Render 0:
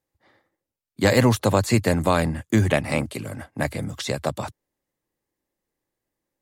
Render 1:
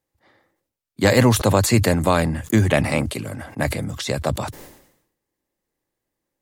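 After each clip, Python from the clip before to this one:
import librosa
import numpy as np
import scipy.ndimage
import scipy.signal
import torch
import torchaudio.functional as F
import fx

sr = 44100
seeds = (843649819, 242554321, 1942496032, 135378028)

y = fx.sustainer(x, sr, db_per_s=73.0)
y = y * 10.0 ** (2.0 / 20.0)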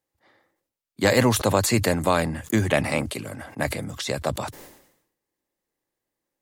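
y = fx.low_shelf(x, sr, hz=190.0, db=-6.5)
y = y * 10.0 ** (-2.0 / 20.0)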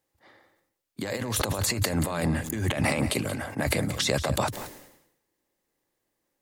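y = fx.over_compress(x, sr, threshold_db=-27.0, ratio=-1.0)
y = y + 10.0 ** (-13.0 / 20.0) * np.pad(y, (int(181 * sr / 1000.0), 0))[:len(y)]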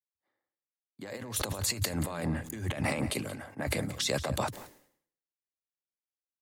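y = fx.band_widen(x, sr, depth_pct=70)
y = y * 10.0 ** (-6.0 / 20.0)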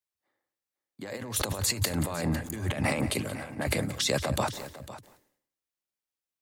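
y = x + 10.0 ** (-15.0 / 20.0) * np.pad(x, (int(503 * sr / 1000.0), 0))[:len(x)]
y = y * 10.0 ** (3.0 / 20.0)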